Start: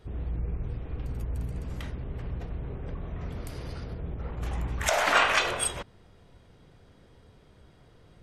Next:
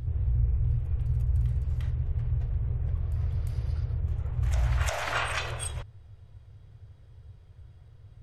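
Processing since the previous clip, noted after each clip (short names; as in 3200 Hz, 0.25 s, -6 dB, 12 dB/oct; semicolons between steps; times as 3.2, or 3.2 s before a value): resonant low shelf 150 Hz +11.5 dB, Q 3; reverse echo 0.35 s -9.5 dB; gain -7.5 dB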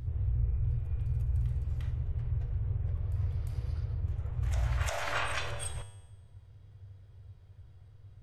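resonator 97 Hz, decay 0.99 s, harmonics all, mix 70%; gain +5 dB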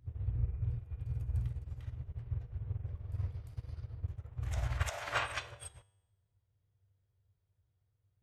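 HPF 78 Hz 6 dB/oct; upward expander 2.5:1, over -45 dBFS; gain +2 dB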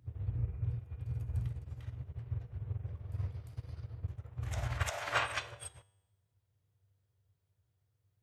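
HPF 84 Hz; gain +2 dB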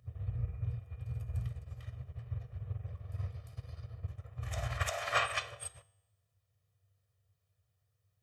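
low shelf 490 Hz -5 dB; reverb RT60 0.35 s, pre-delay 4 ms, DRR 17 dB; gain +1 dB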